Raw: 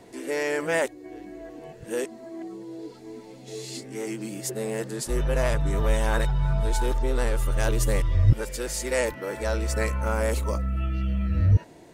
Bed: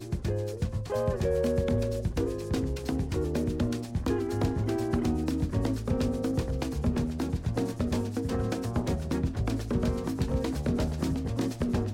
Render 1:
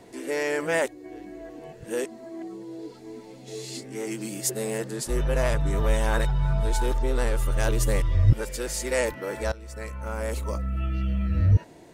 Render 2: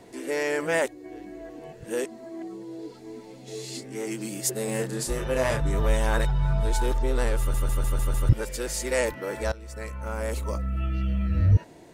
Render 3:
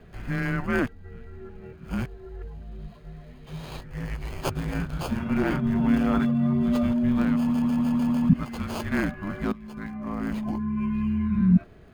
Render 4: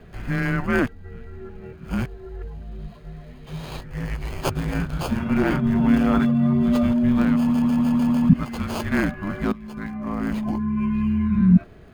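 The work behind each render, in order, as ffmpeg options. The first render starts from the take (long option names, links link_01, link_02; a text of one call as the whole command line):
ffmpeg -i in.wav -filter_complex "[0:a]asettb=1/sr,asplit=3[link_01][link_02][link_03];[link_01]atrim=end=4.114[link_04];[link_02]atrim=start=4.11:end=4.78,asetpts=PTS-STARTPTS,afade=type=in:duration=0.004:curve=qsin,afade=type=out:start_time=0.666:duration=0.004:curve=qsin,highshelf=frequency=3500:gain=6.5[link_05];[link_03]atrim=start=4.776[link_06];[link_04][link_05]acrossfade=duration=0.004:curve1=hsin:curve2=qsin[link_07];[link_07][link_06]acrossfade=duration=0.004:curve1=qsin:curve2=hsin,asplit=2[link_08][link_09];[link_08]atrim=end=9.52,asetpts=PTS-STARTPTS,afade=type=out:start_time=9.516:duration=0.004:curve=hsin:silence=0.112202[link_10];[link_09]atrim=start=9.52,asetpts=PTS-STARTPTS,afade=type=in:duration=1.42:silence=0.112202[link_11];[link_10][link_11]concat=n=2:v=0:a=1" out.wav
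ffmpeg -i in.wav -filter_complex "[0:a]asettb=1/sr,asplit=3[link_01][link_02][link_03];[link_01]atrim=end=4.654[link_04];[link_02]atrim=start=4.65:end=5.61,asetpts=PTS-STARTPTS,afade=type=in:duration=0.004:curve=qsin,afade=type=out:start_time=0.956:duration=0.004:curve=qsin,asplit=2[link_05][link_06];[link_06]adelay=31,volume=-3.5dB[link_07];[link_05][link_07]amix=inputs=2:normalize=0,atrim=end_sample=42336[link_08];[link_03]atrim=start=5.606[link_09];[link_04][link_08]acrossfade=duration=0.004:curve1=hsin:curve2=qsin[link_10];[link_10][link_09]acrossfade=duration=0.004:curve1=qsin:curve2=hsin,asplit=7[link_11][link_12][link_13][link_14][link_15][link_16][link_17];[link_11]atrim=end=7.542[link_18];[link_12]atrim=start=7.388:end=7.542[link_19];[link_13]atrim=start=7.388:end=7.542[link_20];[link_14]atrim=start=7.388:end=7.542[link_21];[link_15]atrim=start=7.388:end=7.542[link_22];[link_16]atrim=start=7.388:end=7.542[link_23];[link_17]atrim=start=8.288[link_24];[link_18][link_19]acrossfade=duration=0.004:curve1=hsin:curve2=hsin[link_25];[link_25][link_20]acrossfade=duration=0.004:curve1=hsin:curve2=hsin[link_26];[link_26][link_21]acrossfade=duration=0.004:curve1=hsin:curve2=hsin[link_27];[link_27][link_22]acrossfade=duration=0.004:curve1=hsin:curve2=hsin[link_28];[link_28][link_23]acrossfade=duration=0.004:curve1=hsin:curve2=hsin[link_29];[link_29][link_24]acrossfade=duration=0.004:curve1=hsin:curve2=hsin" out.wav
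ffmpeg -i in.wav -filter_complex "[0:a]afreqshift=-280,acrossover=split=3500[link_01][link_02];[link_02]acrusher=samples=23:mix=1:aa=0.000001[link_03];[link_01][link_03]amix=inputs=2:normalize=0" out.wav
ffmpeg -i in.wav -af "volume=4dB" out.wav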